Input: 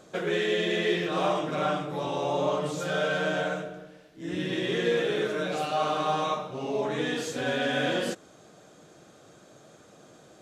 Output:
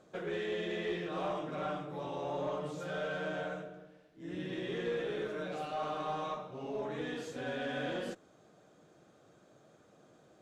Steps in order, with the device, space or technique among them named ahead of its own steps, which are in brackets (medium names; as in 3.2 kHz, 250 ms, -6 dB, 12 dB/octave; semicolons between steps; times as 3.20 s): tube preamp driven hard (valve stage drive 18 dB, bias 0.2; treble shelf 3.1 kHz -8 dB); trim -8 dB